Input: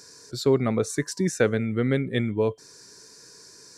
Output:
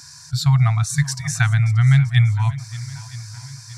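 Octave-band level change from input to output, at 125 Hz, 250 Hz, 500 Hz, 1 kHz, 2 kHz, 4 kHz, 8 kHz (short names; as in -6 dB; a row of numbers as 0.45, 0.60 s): +15.5 dB, n/a, under -20 dB, +6.0 dB, +7.0 dB, +7.0 dB, +7.0 dB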